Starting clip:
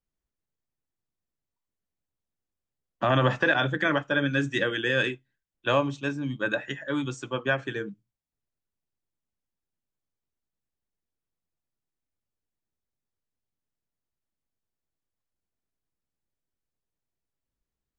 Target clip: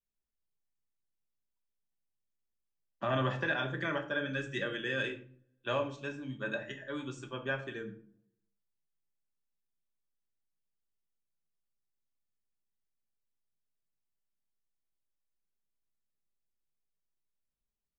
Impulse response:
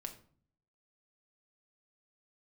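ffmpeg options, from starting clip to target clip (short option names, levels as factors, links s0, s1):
-filter_complex "[1:a]atrim=start_sample=2205,asetrate=43218,aresample=44100[s0];[0:a][s0]afir=irnorm=-1:irlink=0,volume=0.501"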